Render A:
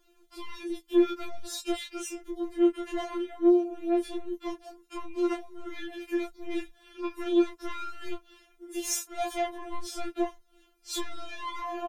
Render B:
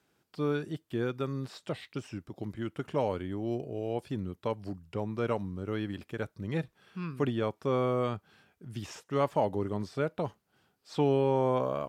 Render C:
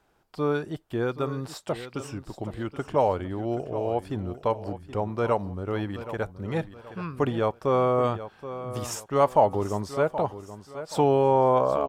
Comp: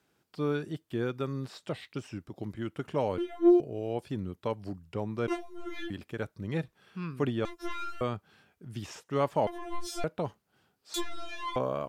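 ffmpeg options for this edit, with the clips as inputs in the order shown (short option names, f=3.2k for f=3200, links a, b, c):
-filter_complex "[0:a]asplit=5[a][b][c][d][e];[1:a]asplit=6[f][g][h][i][j][k];[f]atrim=end=3.182[l];[a]atrim=start=3.178:end=3.602[m];[g]atrim=start=3.598:end=5.282[n];[b]atrim=start=5.278:end=5.902[o];[h]atrim=start=5.898:end=7.452[p];[c]atrim=start=7.448:end=8.012[q];[i]atrim=start=8.008:end=9.472[r];[d]atrim=start=9.468:end=10.042[s];[j]atrim=start=10.038:end=10.942[t];[e]atrim=start=10.938:end=11.562[u];[k]atrim=start=11.558[v];[l][m]acrossfade=d=0.004:c1=hsin:c2=hsin[w];[w][n]acrossfade=d=0.004:c1=hsin:c2=hsin[x];[x][o]acrossfade=d=0.004:c1=hsin:c2=hsin[y];[y][p]acrossfade=d=0.004:c1=hsin:c2=hsin[z];[z][q]acrossfade=d=0.004:c1=hsin:c2=hsin[aa];[aa][r]acrossfade=d=0.004:c1=hsin:c2=hsin[ab];[ab][s]acrossfade=d=0.004:c1=hsin:c2=hsin[ac];[ac][t]acrossfade=d=0.004:c1=hsin:c2=hsin[ad];[ad][u]acrossfade=d=0.004:c1=hsin:c2=hsin[ae];[ae][v]acrossfade=d=0.004:c1=hsin:c2=hsin"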